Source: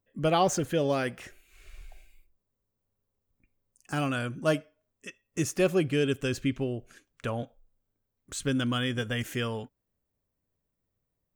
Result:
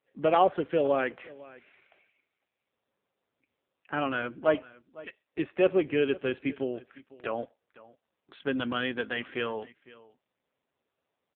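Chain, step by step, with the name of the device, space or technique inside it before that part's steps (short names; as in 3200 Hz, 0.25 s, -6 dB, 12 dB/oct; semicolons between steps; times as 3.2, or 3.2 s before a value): satellite phone (BPF 330–3100 Hz; echo 0.505 s -20.5 dB; gain +3.5 dB; AMR-NB 5.9 kbps 8000 Hz)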